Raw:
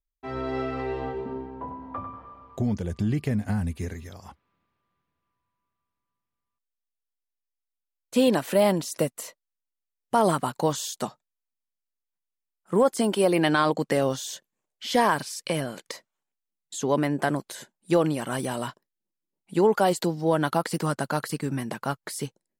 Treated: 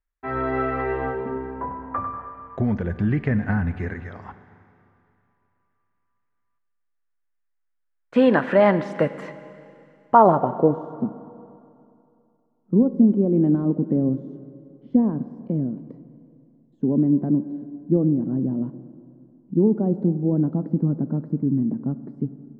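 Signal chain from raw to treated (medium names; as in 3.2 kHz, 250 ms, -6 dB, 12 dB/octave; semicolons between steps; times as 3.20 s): low-pass sweep 1.7 kHz -> 250 Hz, 9.96–10.90 s; Schroeder reverb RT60 2.6 s, combs from 31 ms, DRR 12.5 dB; trim +3.5 dB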